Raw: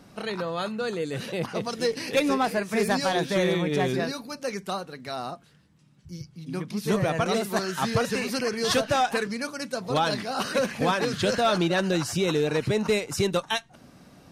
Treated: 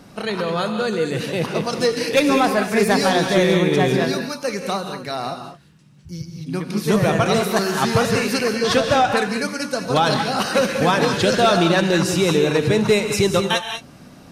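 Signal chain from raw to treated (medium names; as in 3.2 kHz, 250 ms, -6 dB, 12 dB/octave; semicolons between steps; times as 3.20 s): 8.47–9.17 s: treble shelf 6.3 kHz -11 dB; gated-style reverb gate 230 ms rising, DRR 5.5 dB; trim +6.5 dB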